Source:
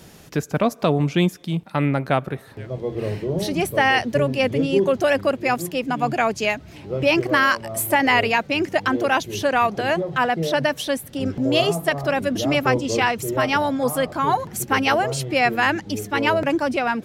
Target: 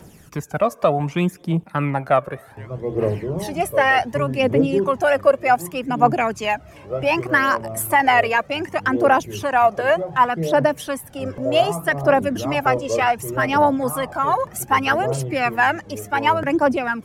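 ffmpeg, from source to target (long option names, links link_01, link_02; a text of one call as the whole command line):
ffmpeg -i in.wav -filter_complex "[0:a]equalizer=frequency=1000:width_type=o:width=0.67:gain=3,equalizer=frequency=4000:width_type=o:width=0.67:gain=-7,equalizer=frequency=10000:width_type=o:width=0.67:gain=3,acrossover=split=350|2000[link_01][link_02][link_03];[link_02]dynaudnorm=framelen=450:gausssize=3:maxgain=6dB[link_04];[link_01][link_04][link_03]amix=inputs=3:normalize=0,aphaser=in_gain=1:out_gain=1:delay=1.9:decay=0.56:speed=0.66:type=triangular,volume=-4dB" out.wav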